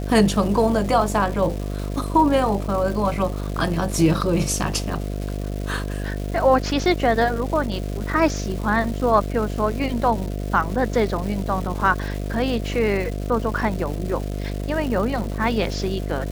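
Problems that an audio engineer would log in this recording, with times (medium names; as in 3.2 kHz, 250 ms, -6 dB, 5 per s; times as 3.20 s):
buzz 50 Hz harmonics 14 -27 dBFS
crackle 540 per s -30 dBFS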